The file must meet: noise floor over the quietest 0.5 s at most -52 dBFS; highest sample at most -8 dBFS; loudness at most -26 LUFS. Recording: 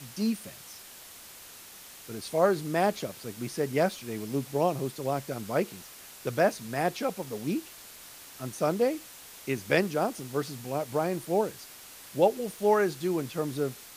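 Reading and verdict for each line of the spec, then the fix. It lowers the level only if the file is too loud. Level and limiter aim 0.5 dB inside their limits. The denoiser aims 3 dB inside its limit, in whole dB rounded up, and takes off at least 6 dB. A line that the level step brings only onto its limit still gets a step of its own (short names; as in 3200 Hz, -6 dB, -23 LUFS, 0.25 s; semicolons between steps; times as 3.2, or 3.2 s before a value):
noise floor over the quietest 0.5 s -48 dBFS: fail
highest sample -9.0 dBFS: OK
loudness -29.5 LUFS: OK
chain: denoiser 7 dB, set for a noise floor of -48 dBFS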